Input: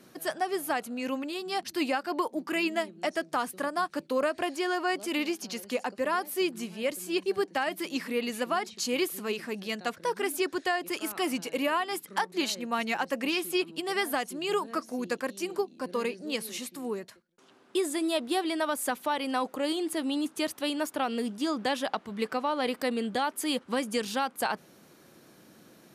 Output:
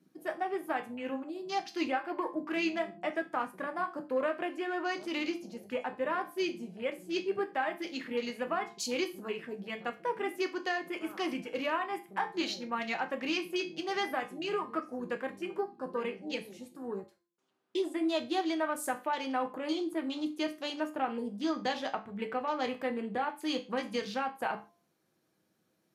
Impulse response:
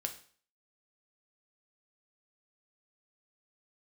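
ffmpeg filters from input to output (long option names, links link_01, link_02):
-filter_complex "[0:a]afwtdn=0.01,asettb=1/sr,asplit=3[link_01][link_02][link_03];[link_01]atrim=end=7.394[link_04];[link_02]atrim=start=7.39:end=8.05,asetpts=PTS-STARTPTS,afade=type=in:duration=0.004:curve=qsin,afade=type=out:start_time=0.656:duration=0.004:curve=qsin,highpass=210[link_05];[link_03]atrim=start=8.046[link_06];[link_04][link_05]acrossfade=duration=0.004:curve1=hsin:curve2=qsin[link_07];[link_07][link_06]acrossfade=duration=0.004:curve1=qsin:curve2=hsin,bandreject=frequency=344.8:width_type=h:width=4,bandreject=frequency=689.6:width_type=h:width=4,bandreject=frequency=1034.4:width_type=h:width=4[link_08];[1:a]atrim=start_sample=2205,afade=type=out:start_time=0.31:duration=0.01,atrim=end_sample=14112,asetrate=66150,aresample=44100[link_09];[link_08][link_09]afir=irnorm=-1:irlink=0"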